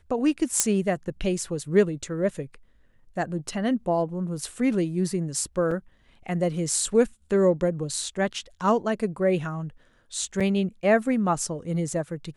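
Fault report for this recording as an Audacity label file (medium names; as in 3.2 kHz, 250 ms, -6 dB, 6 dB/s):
0.600000	0.600000	pop -3 dBFS
5.710000	5.710000	dropout 4.3 ms
10.400000	10.410000	dropout 6 ms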